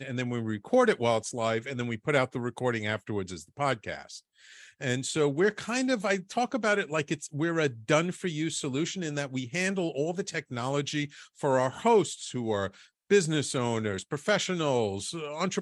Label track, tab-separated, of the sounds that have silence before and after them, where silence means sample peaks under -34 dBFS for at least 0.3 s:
4.820000	11.060000	sound
11.430000	12.680000	sound